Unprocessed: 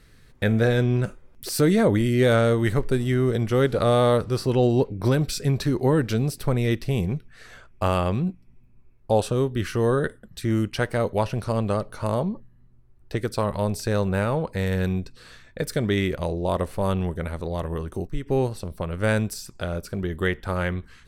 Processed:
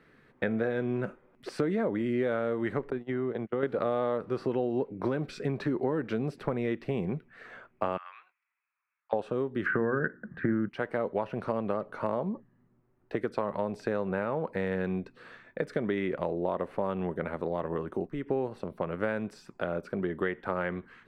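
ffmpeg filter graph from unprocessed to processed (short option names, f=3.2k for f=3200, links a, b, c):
-filter_complex "[0:a]asettb=1/sr,asplit=3[a][b][c];[a]atrim=end=2.904[d];[b]atrim=start=2.9:end=3.63,asetpts=PTS-STARTPTS,afade=t=in:d=0.004:c=qsin,afade=t=out:st=0.726:d=0.004:c=qsin,agate=range=-35dB:threshold=-23dB:ratio=16:release=100:detection=peak,acompressor=threshold=-24dB:ratio=6:attack=3.2:release=140:knee=1:detection=peak,lowpass=4.6k[e];[c]atrim=start=3.626[f];[d][e]acrossfade=d=0.004:c1=hsin:c2=qsin[g];[g][f]acrossfade=d=0.004:c1=qsin:c2=hsin,asettb=1/sr,asplit=3[h][i][j];[h]atrim=end=7.974[k];[i]atrim=start=7.97:end=9.13,asetpts=PTS-STARTPTS,afade=t=in:d=0.004:c=qsin,afade=t=out:st=1.156:d=0.004:c=qsin,asuperpass=centerf=2800:order=8:qfactor=0.57,acompressor=threshold=-37dB:ratio=3:attack=3.2:release=140:knee=1:detection=peak,aemphasis=mode=reproduction:type=75fm[l];[j]atrim=start=9.126[m];[k][l]acrossfade=d=0.004:c1=hsin:c2=qsin[n];[n][m]acrossfade=d=0.004:c1=qsin:c2=hsin,asettb=1/sr,asplit=3[o][p][q];[o]atrim=end=9.664[r];[p]atrim=start=9.66:end=10.69,asetpts=PTS-STARTPTS,afade=t=in:d=0.004:c=qsin,afade=t=out:st=1.026:d=0.004:c=qsin,lowpass=f=1.6k:t=q:w=7.2,equalizer=f=150:w=0.5:g=13.5,bandreject=f=60:t=h:w=6,bandreject=f=120:t=h:w=6,bandreject=f=180:t=h:w=6,bandreject=f=240:t=h:w=6,bandreject=f=300:t=h:w=6,bandreject=f=360:t=h:w=6[s];[q]atrim=start=10.686[t];[r][s]acrossfade=d=0.004:c1=hsin:c2=qsin[u];[u][t]acrossfade=d=0.004:c1=qsin:c2=hsin,acrossover=split=9100[v][w];[w]acompressor=threshold=-55dB:ratio=4:attack=1:release=60[x];[v][x]amix=inputs=2:normalize=0,acrossover=split=170 2500:gain=0.0708 1 0.0794[y][z][aa];[y][z][aa]amix=inputs=3:normalize=0,acompressor=threshold=-27dB:ratio=6,volume=1dB"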